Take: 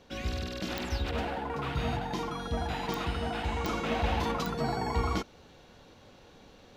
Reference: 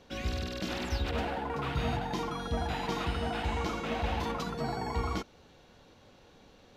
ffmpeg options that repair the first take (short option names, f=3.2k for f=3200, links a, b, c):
-af "adeclick=t=4,asetnsamples=n=441:p=0,asendcmd='3.68 volume volume -3dB',volume=0dB"